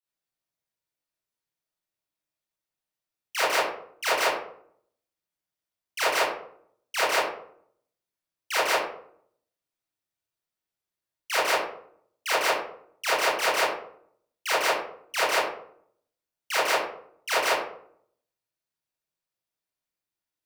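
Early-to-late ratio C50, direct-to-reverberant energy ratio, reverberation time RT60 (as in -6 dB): 0.0 dB, -10.5 dB, 0.65 s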